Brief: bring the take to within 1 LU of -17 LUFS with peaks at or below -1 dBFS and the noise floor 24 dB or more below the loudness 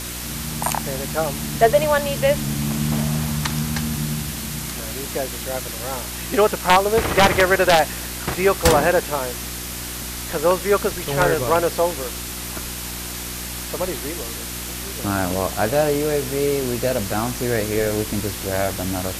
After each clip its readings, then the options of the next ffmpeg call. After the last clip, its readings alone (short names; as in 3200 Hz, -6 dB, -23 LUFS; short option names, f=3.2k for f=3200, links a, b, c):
hum 60 Hz; harmonics up to 360 Hz; hum level -32 dBFS; noise floor -30 dBFS; noise floor target -46 dBFS; loudness -21.5 LUFS; peak -2.0 dBFS; loudness target -17.0 LUFS
-> -af "bandreject=f=60:t=h:w=4,bandreject=f=120:t=h:w=4,bandreject=f=180:t=h:w=4,bandreject=f=240:t=h:w=4,bandreject=f=300:t=h:w=4,bandreject=f=360:t=h:w=4"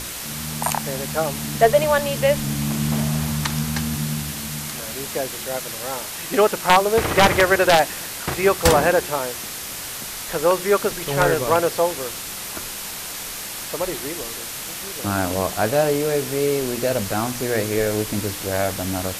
hum none; noise floor -32 dBFS; noise floor target -46 dBFS
-> -af "afftdn=nr=14:nf=-32"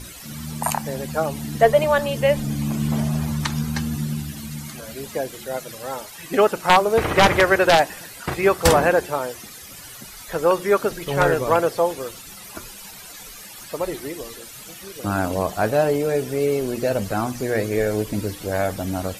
noise floor -40 dBFS; noise floor target -46 dBFS
-> -af "afftdn=nr=6:nf=-40"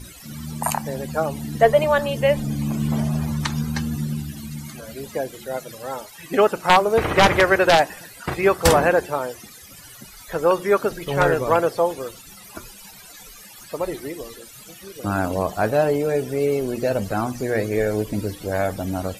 noise floor -43 dBFS; noise floor target -45 dBFS
-> -af "afftdn=nr=6:nf=-43"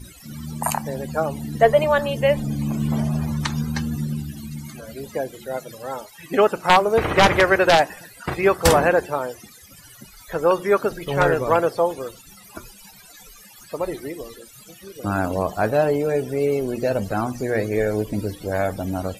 noise floor -46 dBFS; loudness -21.0 LUFS; peak -3.0 dBFS; loudness target -17.0 LUFS
-> -af "volume=4dB,alimiter=limit=-1dB:level=0:latency=1"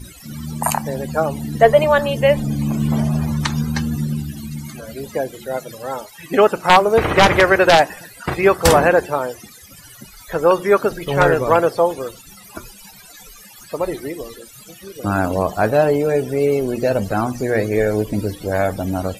loudness -17.5 LUFS; peak -1.0 dBFS; noise floor -42 dBFS